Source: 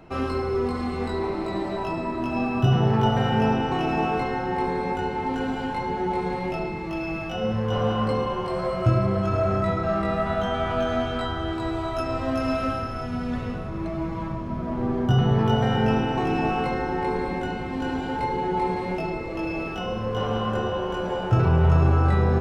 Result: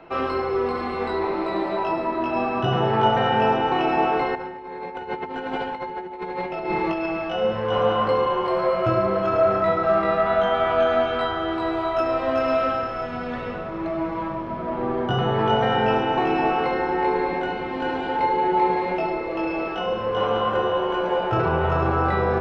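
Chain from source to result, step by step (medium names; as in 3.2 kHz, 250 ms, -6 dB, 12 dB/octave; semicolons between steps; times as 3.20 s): three-band isolator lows -14 dB, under 330 Hz, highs -20 dB, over 4.1 kHz; 4.35–7.06 s: compressor with a negative ratio -34 dBFS, ratio -0.5; reverberation RT60 0.90 s, pre-delay 6 ms, DRR 11.5 dB; trim +5.5 dB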